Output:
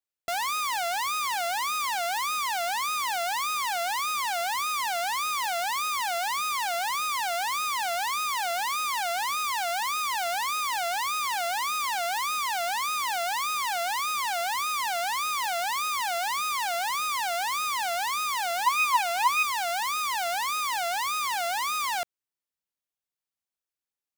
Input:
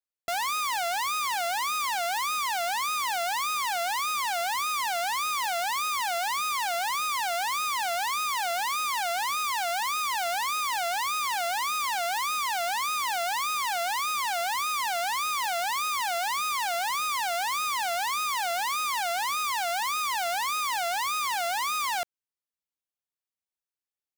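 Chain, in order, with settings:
0:18.66–0:19.43: hollow resonant body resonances 990/2,500 Hz, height 14 dB

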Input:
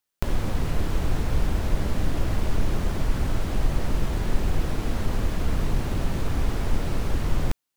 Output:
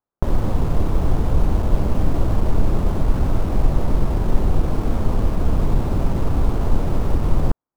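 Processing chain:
low-pass filter 1,200 Hz 24 dB per octave
in parallel at −7 dB: bit reduction 6 bits
on the sum: level +3 dB

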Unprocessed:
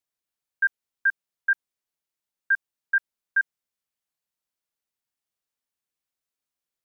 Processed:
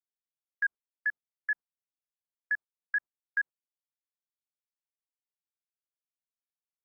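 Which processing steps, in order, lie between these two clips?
tape wow and flutter 120 cents
low-pass filter 1,400 Hz 24 dB per octave
noise gate −38 dBFS, range −27 dB

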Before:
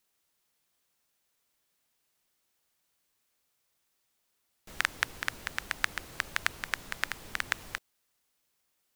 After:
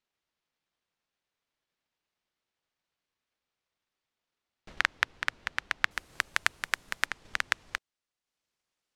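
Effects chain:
low-pass filter 4,200 Hz 12 dB per octave, from 0:05.91 11,000 Hz, from 0:07.06 6,500 Hz
transient designer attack +8 dB, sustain −5 dB
level −5 dB

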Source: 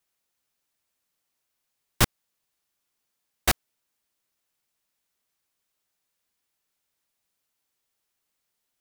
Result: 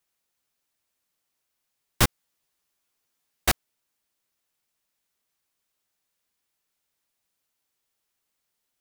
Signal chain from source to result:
0:02.03–0:03.48: double-tracking delay 12 ms −3.5 dB

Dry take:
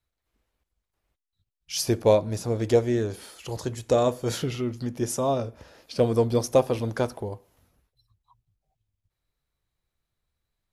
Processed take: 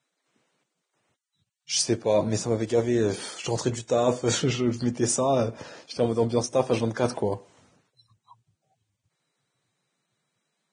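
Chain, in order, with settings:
high-pass filter 120 Hz 24 dB per octave
reversed playback
downward compressor 5 to 1, threshold −29 dBFS, peak gain reduction 14.5 dB
reversed playback
level +8.5 dB
Ogg Vorbis 16 kbit/s 22,050 Hz

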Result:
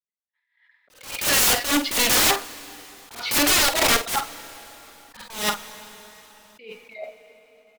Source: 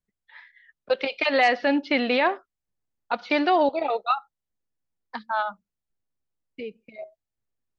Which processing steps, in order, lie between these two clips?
high-pass filter 1,300 Hz 6 dB per octave
noise gate −53 dBFS, range −18 dB
automatic gain control gain up to 11.5 dB
wrap-around overflow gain 18.5 dB
pitch vibrato 3.1 Hz 14 cents
double-tracking delay 48 ms −10 dB
dense smooth reverb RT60 4.5 s, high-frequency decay 0.85×, DRR 17 dB
level that may rise only so fast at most 120 dB per second
level +5.5 dB

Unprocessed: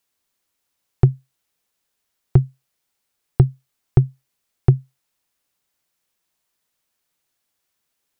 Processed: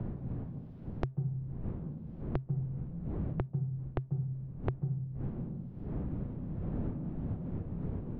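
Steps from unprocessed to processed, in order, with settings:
mu-law and A-law mismatch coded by A
wind on the microphone 150 Hz −38 dBFS
on a send at −13.5 dB: convolution reverb RT60 0.45 s, pre-delay 136 ms
on the sum: downward compressor, threshold −17 dBFS, peak gain reduction 9.5 dB
high-frequency loss of the air 360 metres
multiband upward and downward compressor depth 100%
level −8 dB

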